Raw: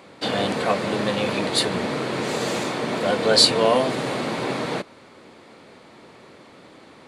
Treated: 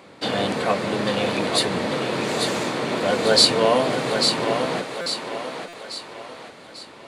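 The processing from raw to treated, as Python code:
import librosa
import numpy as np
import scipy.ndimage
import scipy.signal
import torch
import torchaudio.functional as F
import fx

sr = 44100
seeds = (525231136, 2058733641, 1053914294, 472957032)

p1 = x + fx.echo_thinned(x, sr, ms=844, feedback_pct=46, hz=350.0, wet_db=-5.5, dry=0)
y = fx.buffer_glitch(p1, sr, at_s=(5.01, 5.68), block=256, repeats=8)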